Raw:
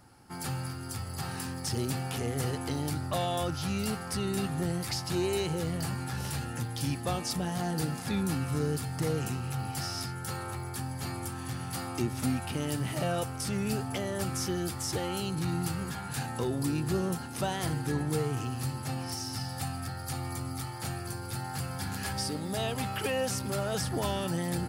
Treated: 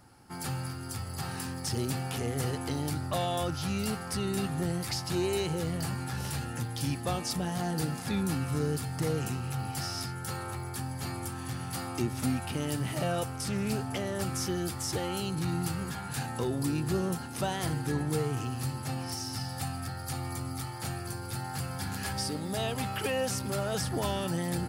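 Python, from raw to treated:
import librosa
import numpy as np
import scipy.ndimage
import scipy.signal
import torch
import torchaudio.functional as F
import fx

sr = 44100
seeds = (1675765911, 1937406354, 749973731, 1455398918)

y = fx.doppler_dist(x, sr, depth_ms=0.12, at=(13.34, 14.22))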